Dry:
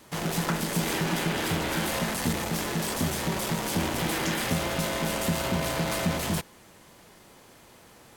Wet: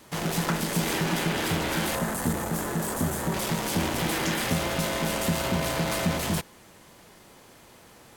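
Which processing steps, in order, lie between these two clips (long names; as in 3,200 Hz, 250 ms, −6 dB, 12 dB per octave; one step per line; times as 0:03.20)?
0:01.95–0:03.34: flat-topped bell 3,500 Hz −8.5 dB
level +1 dB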